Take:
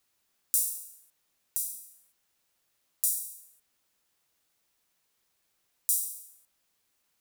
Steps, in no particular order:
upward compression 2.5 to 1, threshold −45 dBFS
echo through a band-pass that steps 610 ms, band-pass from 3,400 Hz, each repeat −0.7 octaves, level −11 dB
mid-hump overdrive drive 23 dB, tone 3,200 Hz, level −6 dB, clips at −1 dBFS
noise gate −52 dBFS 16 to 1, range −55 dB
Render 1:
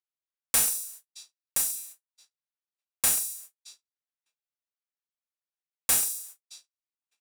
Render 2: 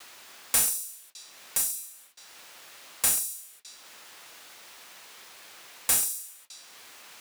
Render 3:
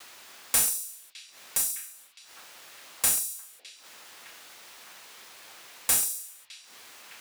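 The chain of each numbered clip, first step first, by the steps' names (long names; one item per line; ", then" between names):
echo through a band-pass that steps, then upward compression, then noise gate, then mid-hump overdrive
upward compression, then echo through a band-pass that steps, then mid-hump overdrive, then noise gate
upward compression, then mid-hump overdrive, then noise gate, then echo through a band-pass that steps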